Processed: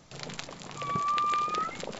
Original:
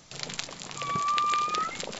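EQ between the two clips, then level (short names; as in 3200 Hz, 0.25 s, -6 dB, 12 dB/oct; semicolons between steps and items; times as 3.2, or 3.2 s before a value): high shelf 2000 Hz -9 dB; +1.0 dB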